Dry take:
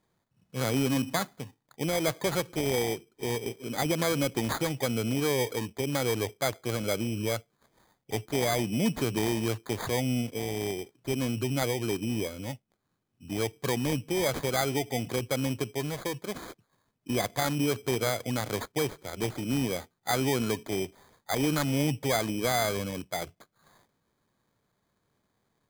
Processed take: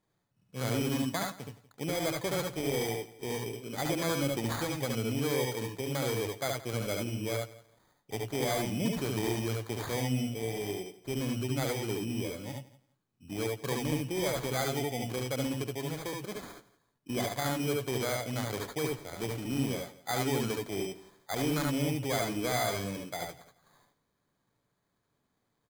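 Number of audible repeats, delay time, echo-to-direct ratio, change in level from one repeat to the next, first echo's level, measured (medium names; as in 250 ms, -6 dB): 4, 71 ms, -1.5 dB, no regular repeats, -3.5 dB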